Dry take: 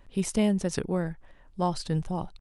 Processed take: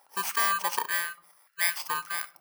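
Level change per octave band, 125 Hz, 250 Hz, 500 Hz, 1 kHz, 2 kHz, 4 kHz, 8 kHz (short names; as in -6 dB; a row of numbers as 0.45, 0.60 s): under -25 dB, -27.0 dB, -14.5 dB, +5.0 dB, +15.0 dB, +6.0 dB, +5.0 dB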